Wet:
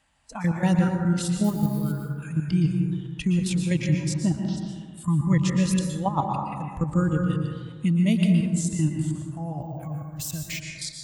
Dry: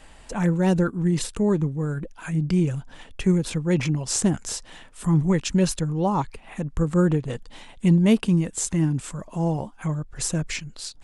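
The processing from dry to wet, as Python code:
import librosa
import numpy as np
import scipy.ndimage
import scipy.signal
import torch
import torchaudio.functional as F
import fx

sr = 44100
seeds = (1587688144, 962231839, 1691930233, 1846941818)

y = fx.crossing_spikes(x, sr, level_db=-23.0, at=(1.44, 1.92))
y = fx.lowpass(y, sr, hz=fx.line((4.12, 2100.0), (4.56, 4700.0)), slope=24, at=(4.12, 4.56), fade=0.02)
y = fx.noise_reduce_blind(y, sr, reduce_db=13)
y = scipy.signal.sosfilt(scipy.signal.butter(2, 60.0, 'highpass', fs=sr, output='sos'), y)
y = fx.peak_eq(y, sr, hz=410.0, db=-14.5, octaves=0.61)
y = fx.level_steps(y, sr, step_db=12)
y = fx.rev_plate(y, sr, seeds[0], rt60_s=1.7, hf_ratio=0.3, predelay_ms=105, drr_db=1.5)
y = fx.resample_bad(y, sr, factor=2, down='none', up='hold', at=(9.61, 10.6))
y = y * librosa.db_to_amplitude(3.5)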